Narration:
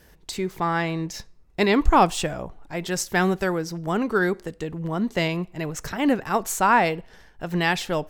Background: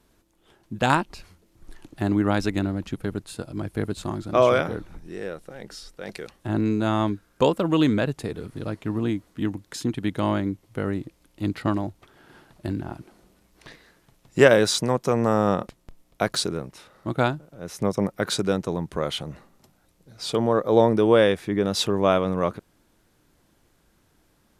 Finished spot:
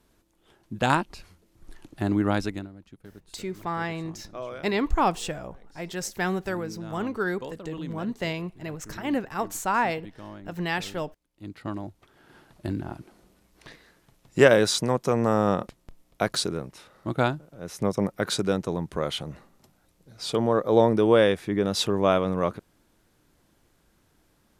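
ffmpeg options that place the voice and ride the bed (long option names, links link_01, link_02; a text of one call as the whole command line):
ffmpeg -i stem1.wav -i stem2.wav -filter_complex "[0:a]adelay=3050,volume=-6dB[link_01];[1:a]volume=15dB,afade=type=out:start_time=2.36:duration=0.33:silence=0.149624,afade=type=in:start_time=11.31:duration=1.24:silence=0.141254[link_02];[link_01][link_02]amix=inputs=2:normalize=0" out.wav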